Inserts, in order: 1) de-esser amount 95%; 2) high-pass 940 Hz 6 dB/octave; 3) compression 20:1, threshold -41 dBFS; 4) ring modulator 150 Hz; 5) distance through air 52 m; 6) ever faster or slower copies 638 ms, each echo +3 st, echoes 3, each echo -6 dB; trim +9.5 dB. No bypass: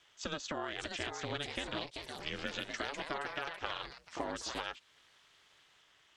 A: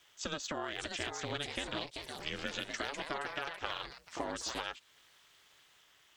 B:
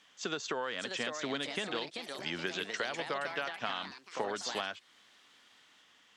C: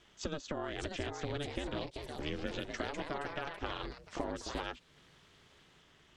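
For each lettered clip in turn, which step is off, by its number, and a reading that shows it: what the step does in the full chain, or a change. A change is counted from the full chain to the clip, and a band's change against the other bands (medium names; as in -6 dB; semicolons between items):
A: 5, 8 kHz band +3.5 dB; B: 4, crest factor change -3.0 dB; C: 2, 125 Hz band +7.5 dB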